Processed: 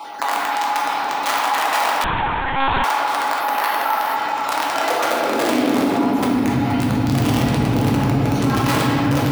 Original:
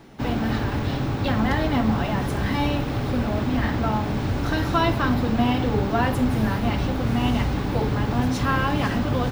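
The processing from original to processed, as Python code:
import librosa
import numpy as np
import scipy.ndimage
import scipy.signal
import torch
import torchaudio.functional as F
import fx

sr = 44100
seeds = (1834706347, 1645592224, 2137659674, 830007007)

p1 = fx.spec_dropout(x, sr, seeds[0], share_pct=35)
p2 = fx.low_shelf(p1, sr, hz=84.0, db=3.5)
p3 = fx.rider(p2, sr, range_db=10, speed_s=2.0)
p4 = p2 + (p3 * 10.0 ** (-1.0 / 20.0))
p5 = fx.fixed_phaser(p4, sr, hz=560.0, stages=6, at=(5.84, 6.46))
p6 = fx.comb_fb(p5, sr, f0_hz=280.0, decay_s=0.17, harmonics='odd', damping=0.0, mix_pct=80)
p7 = (np.mod(10.0 ** (19.5 / 20.0) * p6 + 1.0, 2.0) - 1.0) / 10.0 ** (19.5 / 20.0)
p8 = fx.filter_sweep_highpass(p7, sr, from_hz=920.0, to_hz=120.0, start_s=4.51, end_s=6.4, q=2.3)
p9 = p8 + fx.echo_single(p8, sr, ms=475, db=-12.5, dry=0)
p10 = fx.room_shoebox(p9, sr, seeds[1], volume_m3=120.0, walls='hard', distance_m=0.7)
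p11 = fx.lpc_monotone(p10, sr, seeds[2], pitch_hz=270.0, order=8, at=(2.04, 2.84))
p12 = fx.resample_bad(p11, sr, factor=3, down='filtered', up='hold', at=(3.4, 4.16))
y = fx.env_flatten(p12, sr, amount_pct=50)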